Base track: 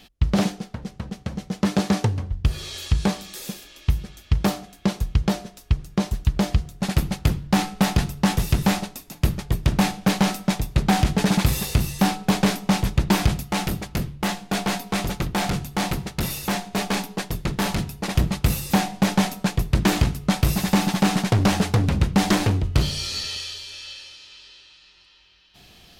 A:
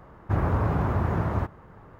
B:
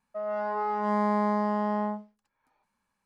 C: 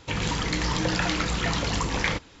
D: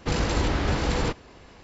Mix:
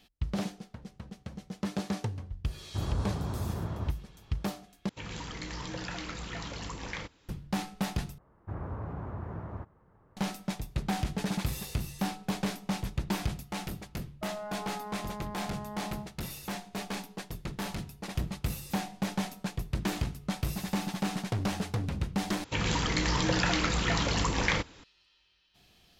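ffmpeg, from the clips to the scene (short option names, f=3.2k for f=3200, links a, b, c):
-filter_complex "[1:a]asplit=2[a][b];[3:a]asplit=2[c][d];[0:a]volume=-12.5dB[e];[a]lowshelf=f=500:g=6[f];[b]highshelf=f=2.7k:g=-11[g];[2:a]acompressor=threshold=-30dB:ratio=6:attack=3.2:release=140:knee=1:detection=peak[h];[e]asplit=4[i][j][k][l];[i]atrim=end=4.894[m];[c]atrim=end=2.4,asetpts=PTS-STARTPTS,volume=-13dB[n];[j]atrim=start=7.286:end=8.184[o];[g]atrim=end=1.99,asetpts=PTS-STARTPTS,volume=-13.5dB[p];[k]atrim=start=10.166:end=22.444[q];[d]atrim=end=2.4,asetpts=PTS-STARTPTS,volume=-2dB[r];[l]atrim=start=24.836[s];[f]atrim=end=1.99,asetpts=PTS-STARTPTS,volume=-14dB,afade=t=in:d=0.004:c=hsin,afade=t=out:st=1.986:d=0.004:c=hsin,adelay=2450[t];[h]atrim=end=3.05,asetpts=PTS-STARTPTS,volume=-6dB,afade=t=in:d=0.004:c=hsin,afade=t=out:st=3.046:d=0.004:c=hsin,adelay=14070[u];[m][n]acrossfade=d=0.004:c1=hsin:c2=hsin[v];[v][o]acrossfade=d=0.004:c1=hsin:c2=hsin[w];[w][p]acrossfade=d=0.004:c1=hsin:c2=hsin[x];[x][q]acrossfade=d=0.004:c1=hsin:c2=hsin[y];[y][r]acrossfade=d=0.004:c1=hsin:c2=hsin[z];[z][s]acrossfade=d=0.004:c1=hsin:c2=hsin[aa];[aa][t][u]amix=inputs=3:normalize=0"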